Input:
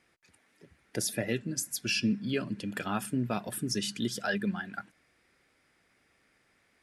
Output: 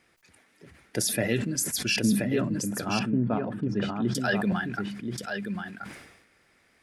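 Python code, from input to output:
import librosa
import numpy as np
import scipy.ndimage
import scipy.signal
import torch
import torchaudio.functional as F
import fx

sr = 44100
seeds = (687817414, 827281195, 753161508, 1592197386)

y = fx.lowpass(x, sr, hz=1200.0, slope=12, at=(1.96, 4.15))
y = y + 10.0 ** (-6.5 / 20.0) * np.pad(y, (int(1030 * sr / 1000.0), 0))[:len(y)]
y = fx.sustainer(y, sr, db_per_s=59.0)
y = y * 10.0 ** (4.0 / 20.0)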